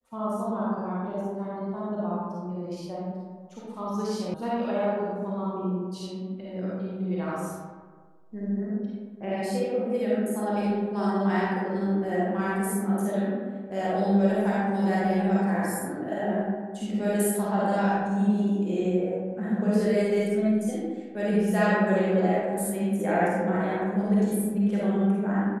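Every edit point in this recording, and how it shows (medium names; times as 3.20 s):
4.34 s: sound stops dead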